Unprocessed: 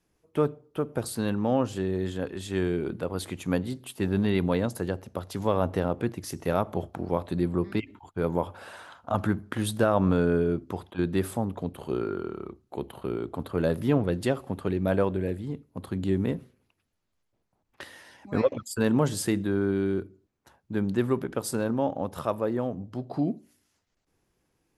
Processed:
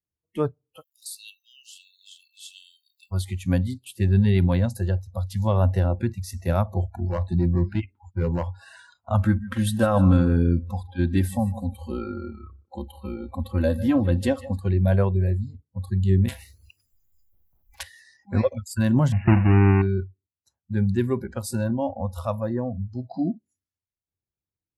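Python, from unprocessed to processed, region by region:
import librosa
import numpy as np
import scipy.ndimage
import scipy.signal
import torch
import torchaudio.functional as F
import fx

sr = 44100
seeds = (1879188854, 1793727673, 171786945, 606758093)

y = fx.dmg_crackle(x, sr, seeds[0], per_s=520.0, level_db=-57.0, at=(0.8, 3.11), fade=0.02)
y = fx.brickwall_highpass(y, sr, low_hz=2600.0, at=(0.8, 3.11), fade=0.02)
y = fx.chain(y, sr, fx.high_shelf(hz=3400.0, db=-5.0),
    fx.clip_hard(threshold_db=-20.5),
    fx.doubler(ms=12.0, db=-14), at=(7.01, 8.49))
y = fx.chain(y, sr, fx.comb(ms=3.8, depth=0.58),
    fx.echo_feedback(ms=152, feedback_pct=37, wet_db=-14.0), at=(9.25, 14.58))
y = fx.chain(y, sr, fx.high_shelf(hz=8900.0, db=3.0),
    fx.spectral_comp(ratio=4.0), at=(16.28, 17.83))
y = fx.chain(y, sr, fx.halfwave_hold(),
    fx.brickwall_lowpass(high_hz=2900.0), at=(19.12, 19.82))
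y = fx.noise_reduce_blind(y, sr, reduce_db=27)
y = fx.peak_eq(y, sr, hz=87.0, db=14.5, octaves=1.5)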